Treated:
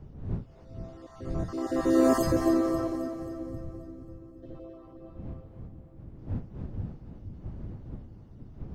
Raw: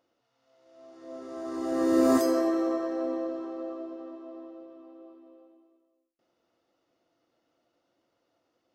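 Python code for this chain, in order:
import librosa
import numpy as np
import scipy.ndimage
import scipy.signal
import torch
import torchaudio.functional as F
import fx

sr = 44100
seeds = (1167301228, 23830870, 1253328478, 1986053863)

p1 = fx.spec_dropout(x, sr, seeds[0], share_pct=26)
p2 = fx.dmg_wind(p1, sr, seeds[1], corner_hz=140.0, level_db=-42.0)
p3 = fx.rider(p2, sr, range_db=4, speed_s=2.0)
p4 = p2 + F.gain(torch.from_numpy(p3), -0.5).numpy()
p5 = fx.spec_box(p4, sr, start_s=2.96, length_s=1.47, low_hz=200.0, high_hz=10000.0, gain_db=-17)
p6 = fx.echo_split(p5, sr, split_hz=460.0, low_ms=474, high_ms=267, feedback_pct=52, wet_db=-9.0)
y = F.gain(torch.from_numpy(p6), -5.0).numpy()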